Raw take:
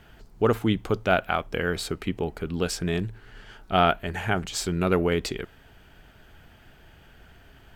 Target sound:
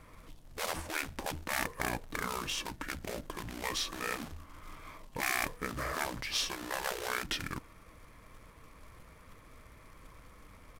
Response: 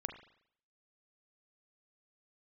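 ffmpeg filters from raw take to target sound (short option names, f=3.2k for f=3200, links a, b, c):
-af "acrusher=bits=3:mode=log:mix=0:aa=0.000001,asetrate=31664,aresample=44100,afftfilt=real='re*lt(hypot(re,im),0.158)':imag='im*lt(hypot(re,im),0.158)':win_size=1024:overlap=0.75,volume=-2.5dB"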